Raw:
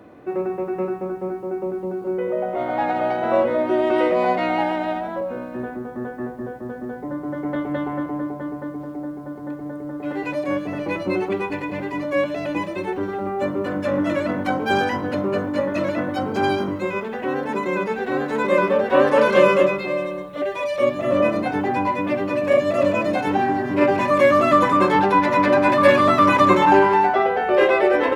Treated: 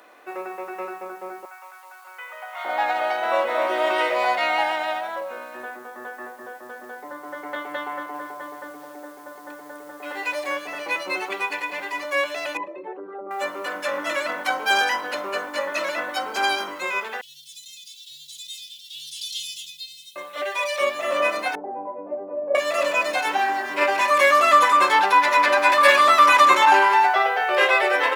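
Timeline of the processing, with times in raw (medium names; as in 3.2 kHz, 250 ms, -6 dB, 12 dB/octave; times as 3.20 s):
1.45–2.65 s: high-pass 920 Hz 24 dB/octave
3.22–3.66 s: echo throw 260 ms, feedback 55%, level -5 dB
7.86–10.50 s: bit-crushed delay 280 ms, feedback 55%, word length 9-bit, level -12.5 dB
12.57–13.31 s: resonances exaggerated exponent 2
17.21–20.16 s: Chebyshev band-stop 140–3300 Hz, order 5
21.55–22.55 s: Chebyshev low-pass 630 Hz, order 3
whole clip: high-pass 880 Hz 12 dB/octave; treble shelf 3.6 kHz +9 dB; trim +3 dB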